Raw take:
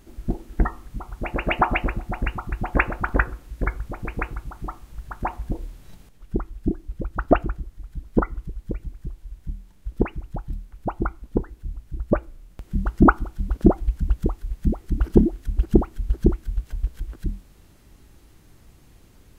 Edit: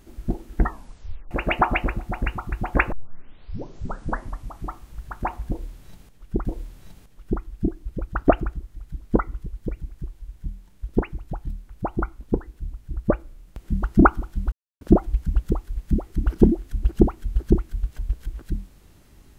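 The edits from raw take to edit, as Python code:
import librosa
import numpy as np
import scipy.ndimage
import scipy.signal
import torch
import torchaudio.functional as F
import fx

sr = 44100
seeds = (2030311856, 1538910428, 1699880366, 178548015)

y = fx.edit(x, sr, fx.tape_stop(start_s=0.69, length_s=0.62),
    fx.tape_start(start_s=2.92, length_s=1.77),
    fx.repeat(start_s=5.48, length_s=0.97, count=2),
    fx.insert_silence(at_s=13.55, length_s=0.29), tone=tone)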